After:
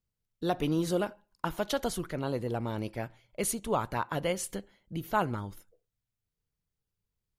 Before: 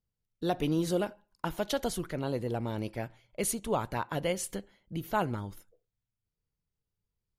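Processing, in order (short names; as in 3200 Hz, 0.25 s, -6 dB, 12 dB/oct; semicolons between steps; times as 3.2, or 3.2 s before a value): dynamic EQ 1200 Hz, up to +4 dB, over -47 dBFS, Q 2.1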